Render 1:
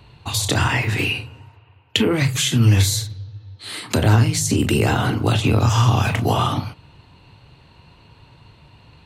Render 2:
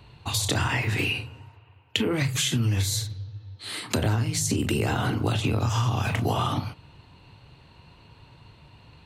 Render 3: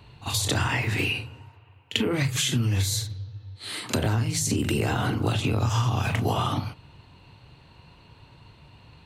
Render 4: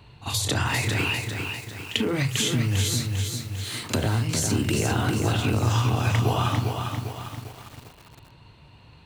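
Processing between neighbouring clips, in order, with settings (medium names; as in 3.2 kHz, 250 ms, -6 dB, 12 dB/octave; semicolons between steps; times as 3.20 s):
compression, threshold -18 dBFS, peak gain reduction 8 dB; trim -3 dB
pre-echo 43 ms -14 dB
bit-crushed delay 399 ms, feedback 55%, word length 7-bit, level -5 dB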